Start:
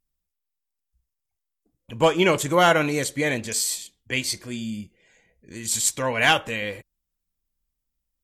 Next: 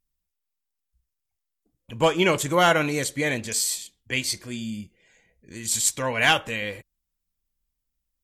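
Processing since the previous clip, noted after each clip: bell 480 Hz -2 dB 2.9 oct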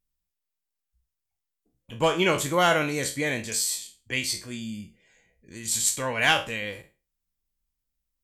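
spectral trails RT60 0.31 s; gain -3 dB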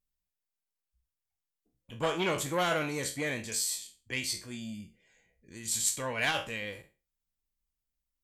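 core saturation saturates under 1600 Hz; gain -5 dB

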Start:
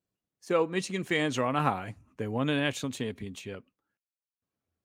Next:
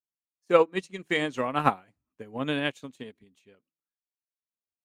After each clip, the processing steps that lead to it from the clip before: bell 100 Hz -7.5 dB 0.96 oct; de-hum 161 Hz, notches 2; upward expander 2.5:1, over -42 dBFS; gain +8.5 dB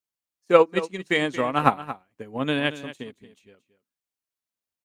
echo 0.228 s -14.5 dB; gain +4 dB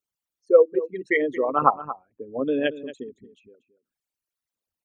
formant sharpening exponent 3; gain +1 dB

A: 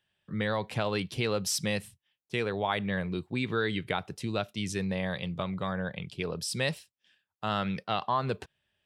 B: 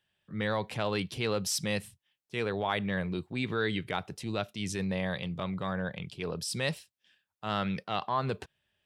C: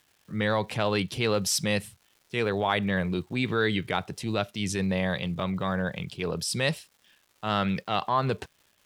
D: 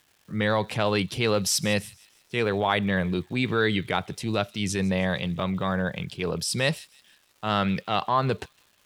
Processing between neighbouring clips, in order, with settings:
transient shaper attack -6 dB, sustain 0 dB
crackle 460/s -55 dBFS; gain +5 dB
thin delay 0.158 s, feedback 45%, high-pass 3200 Hz, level -19.5 dB; gain +2 dB

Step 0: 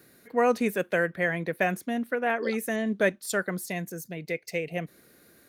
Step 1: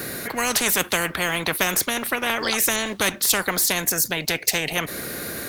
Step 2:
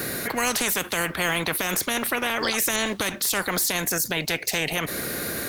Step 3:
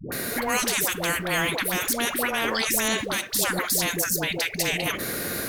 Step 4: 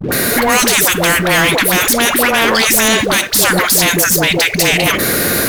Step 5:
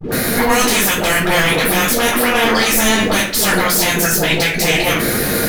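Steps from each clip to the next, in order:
spectral compressor 4:1; gain +7 dB
limiter -14.5 dBFS, peak gain reduction 10.5 dB; gain +1.5 dB
dispersion highs, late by 0.121 s, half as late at 520 Hz
sample leveller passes 3; gain +5 dB
shoebox room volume 260 m³, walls furnished, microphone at 4 m; gain -10 dB

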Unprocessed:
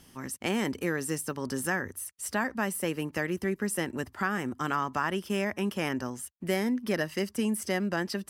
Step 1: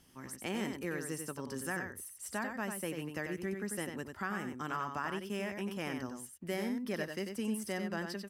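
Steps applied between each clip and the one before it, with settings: echo 93 ms -6 dB; gain -8.5 dB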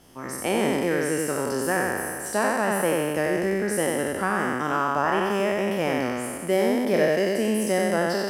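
spectral trails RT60 2.12 s; bell 570 Hz +9.5 dB 1.7 oct; gain +6 dB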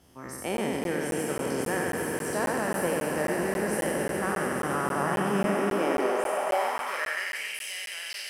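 swelling echo 0.14 s, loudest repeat 5, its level -10 dB; high-pass sweep 63 Hz -> 2800 Hz, 4.57–7.64; crackling interface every 0.27 s, samples 512, zero, from 0.57; gain -6.5 dB

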